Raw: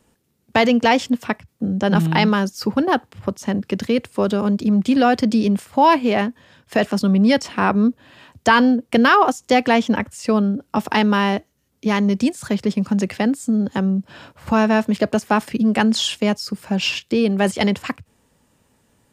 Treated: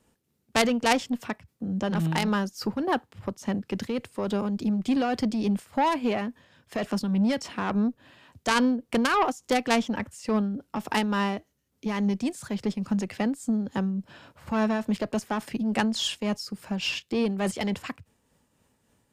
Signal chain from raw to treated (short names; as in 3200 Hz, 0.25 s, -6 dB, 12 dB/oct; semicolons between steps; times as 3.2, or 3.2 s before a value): added harmonics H 2 -19 dB, 3 -9 dB, 5 -15 dB, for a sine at -1 dBFS; tremolo triangle 3.5 Hz, depth 45%; gain -3.5 dB